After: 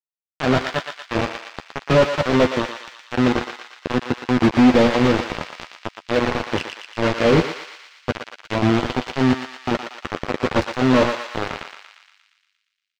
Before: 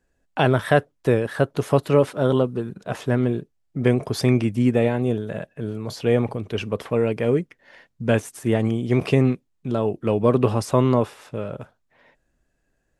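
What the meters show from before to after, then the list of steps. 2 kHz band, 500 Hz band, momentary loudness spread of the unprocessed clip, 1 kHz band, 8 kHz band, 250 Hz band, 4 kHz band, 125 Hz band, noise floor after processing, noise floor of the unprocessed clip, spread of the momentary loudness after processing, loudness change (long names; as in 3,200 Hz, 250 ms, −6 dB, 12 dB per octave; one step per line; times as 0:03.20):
+6.0 dB, 0.0 dB, 12 LU, +4.5 dB, +1.5 dB, +3.0 dB, +8.0 dB, −3.5 dB, −77 dBFS, −71 dBFS, 17 LU, +1.5 dB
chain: notch filter 430 Hz, Q 12
gain on a spectral selection 0:03.94–0:04.92, 600–8,500 Hz −8 dB
parametric band 64 Hz −13 dB 0.75 octaves
hum removal 59.64 Hz, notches 19
in parallel at −3 dB: output level in coarse steps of 23 dB
on the sum: volume swells 243 ms
soft clipping −19 dBFS, distortion −8 dB
bit reduction 4 bits
high-frequency loss of the air 170 metres
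double-tracking delay 12 ms −9 dB
on a send: feedback echo with a high-pass in the loop 117 ms, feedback 67%, high-pass 1,000 Hz, level −5 dB
on the sum: level +6.5 dB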